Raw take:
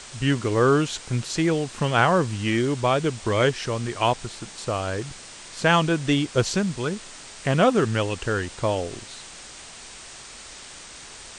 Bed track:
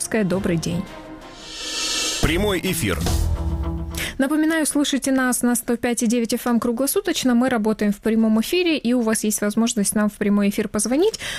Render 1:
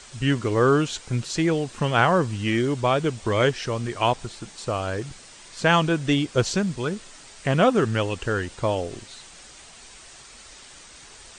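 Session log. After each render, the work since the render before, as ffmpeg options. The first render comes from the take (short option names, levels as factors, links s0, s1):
-af "afftdn=nr=6:nf=-42"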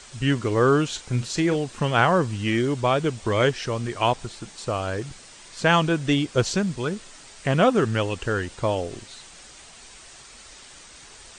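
-filter_complex "[0:a]asettb=1/sr,asplit=3[s0][s1][s2];[s0]atrim=end=0.874[s3];[s1]atrim=start=0.87:end=1.56,asetpts=PTS-STARTPTS,afade=t=in:d=0.004:c=qsin,afade=t=out:st=0.686:d=0.004:c=qsin,asplit=2[s4][s5];[s5]adelay=40,volume=0.251[s6];[s4][s6]amix=inputs=2:normalize=0,atrim=end_sample=30429[s7];[s2]atrim=start=1.556[s8];[s3][s7]acrossfade=d=0.004:c1=hsin:c2=qsin[s9];[s9][s8]acrossfade=d=0.004:c1=qsin:c2=hsin"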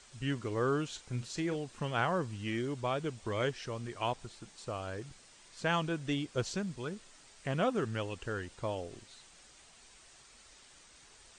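-af "volume=0.237"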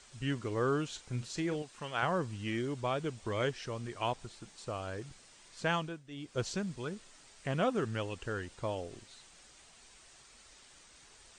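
-filter_complex "[0:a]asettb=1/sr,asplit=3[s0][s1][s2];[s0]atrim=end=1.624[s3];[s1]atrim=start=1.62:end=2.03,asetpts=PTS-STARTPTS,afade=t=in:d=0.004:c=qsin,afade=t=out:st=0.406:d=0.004:c=qsin,lowshelf=f=410:g=-11[s4];[s2]atrim=start=2.026[s5];[s3][s4]acrossfade=d=0.004:c1=hsin:c2=qsin[s6];[s6][s5]acrossfade=d=0.004:c1=qsin:c2=hsin,asplit=3[s7][s8][s9];[s7]atrim=end=6.03,asetpts=PTS-STARTPTS,afade=t=out:st=5.69:d=0.34:silence=0.149624[s10];[s8]atrim=start=6.03:end=6.1,asetpts=PTS-STARTPTS,volume=0.15[s11];[s9]atrim=start=6.1,asetpts=PTS-STARTPTS,afade=t=in:d=0.34:silence=0.149624[s12];[s10][s11][s12]concat=n=3:v=0:a=1"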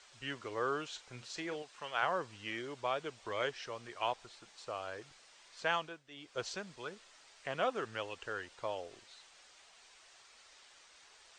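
-filter_complex "[0:a]acrossover=split=440 6800:gain=0.158 1 0.2[s0][s1][s2];[s0][s1][s2]amix=inputs=3:normalize=0"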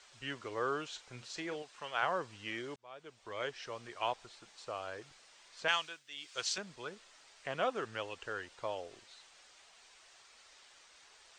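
-filter_complex "[0:a]asettb=1/sr,asplit=3[s0][s1][s2];[s0]atrim=end=5.684[s3];[s1]atrim=start=5.68:end=6.58,asetpts=PTS-STARTPTS,afade=t=in:d=0.004:c=qsin,afade=t=out:st=0.896:d=0.004:c=qsin,tiltshelf=f=1200:g=-10[s4];[s2]atrim=start=6.576[s5];[s3][s4]acrossfade=d=0.004:c1=hsin:c2=qsin[s6];[s6][s5]acrossfade=d=0.004:c1=qsin:c2=hsin,asplit=2[s7][s8];[s7]atrim=end=2.76,asetpts=PTS-STARTPTS,afade=t=out:st=2.756:d=0.004:c=hsin[s9];[s8]atrim=start=2.76,asetpts=PTS-STARTPTS,afade=t=in:d=0.97[s10];[s9][s10]concat=n=2:v=0:a=1"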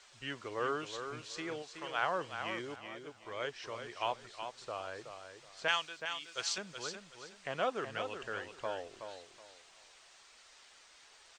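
-af "aecho=1:1:373|746|1119:0.398|0.0995|0.0249"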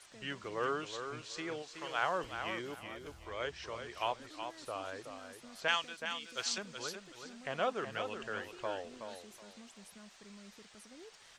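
-filter_complex "[1:a]volume=0.015[s0];[0:a][s0]amix=inputs=2:normalize=0"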